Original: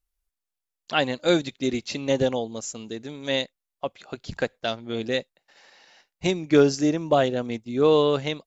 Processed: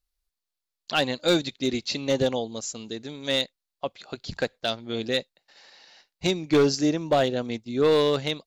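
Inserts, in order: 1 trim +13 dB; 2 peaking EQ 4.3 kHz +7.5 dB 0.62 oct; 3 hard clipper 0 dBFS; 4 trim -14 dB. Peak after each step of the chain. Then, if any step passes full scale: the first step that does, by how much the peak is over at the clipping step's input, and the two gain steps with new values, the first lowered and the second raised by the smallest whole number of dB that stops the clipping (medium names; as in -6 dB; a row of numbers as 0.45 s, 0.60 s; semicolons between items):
+6.5 dBFS, +7.5 dBFS, 0.0 dBFS, -14.0 dBFS; step 1, 7.5 dB; step 1 +5 dB, step 4 -6 dB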